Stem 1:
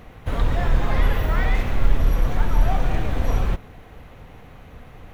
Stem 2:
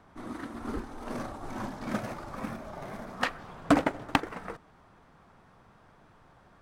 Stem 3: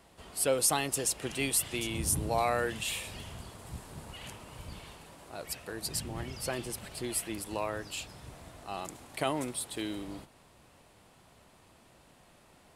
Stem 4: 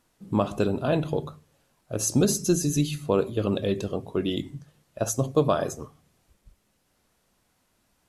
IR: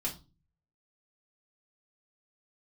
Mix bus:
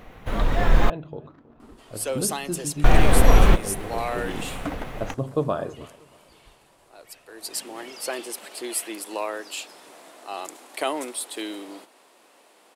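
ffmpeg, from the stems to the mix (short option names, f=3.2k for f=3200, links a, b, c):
-filter_complex "[0:a]equalizer=f=78:w=0.75:g=-8,dynaudnorm=f=130:g=11:m=7dB,volume=0dB,asplit=3[a][b][c];[a]atrim=end=0.9,asetpts=PTS-STARTPTS,afade=t=out:st=0.896:d=0.004:c=hsin[d];[b]atrim=start=0.9:end=2.84,asetpts=PTS-STARTPTS,volume=0[e];[c]atrim=start=2.84,asetpts=PTS-STARTPTS,afade=t=in:d=0.004:c=hsin[f];[d][e][f]concat=n=3:v=0:a=1[g];[1:a]adynamicsmooth=sensitivity=4.5:basefreq=700,adelay=950,volume=-17.5dB[h];[2:a]highpass=f=300:w=0.5412,highpass=f=300:w=1.3066,adelay=1600,volume=6.5dB,afade=t=out:st=4.37:d=0.21:silence=0.281838,afade=t=in:st=7.28:d=0.35:silence=0.281838[i];[3:a]lowpass=2.6k,volume=-12.5dB,asplit=3[j][k][l];[k]volume=-22dB[m];[l]apad=whole_len=333761[n];[h][n]sidechaincompress=threshold=-41dB:ratio=8:attack=16:release=194[o];[m]aecho=0:1:319|638|957|1276|1595:1|0.32|0.102|0.0328|0.0105[p];[g][o][i][j][p]amix=inputs=5:normalize=0,dynaudnorm=f=100:g=21:m=10dB"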